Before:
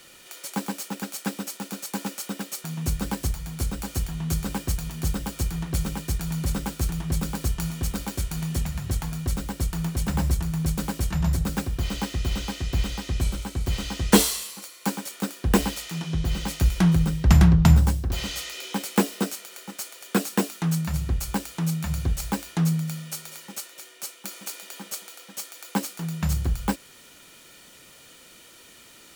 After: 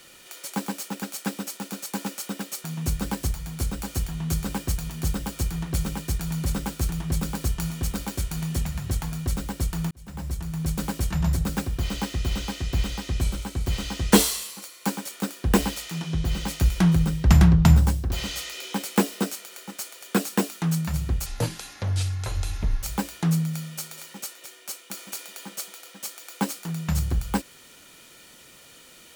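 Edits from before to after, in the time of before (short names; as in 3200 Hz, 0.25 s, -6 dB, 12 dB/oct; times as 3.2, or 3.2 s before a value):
9.91–10.84 fade in
21.26–22.17 speed 58%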